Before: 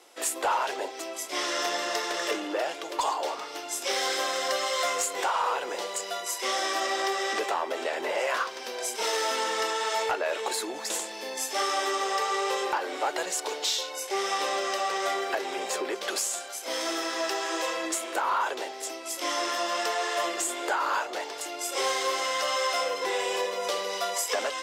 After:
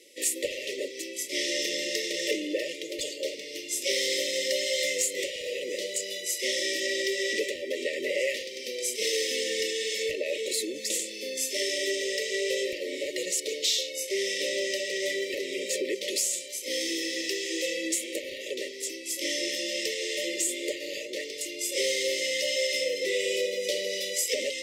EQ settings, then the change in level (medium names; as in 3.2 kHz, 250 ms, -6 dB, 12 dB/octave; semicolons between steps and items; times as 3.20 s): brick-wall FIR band-stop 610–1800 Hz; +2.0 dB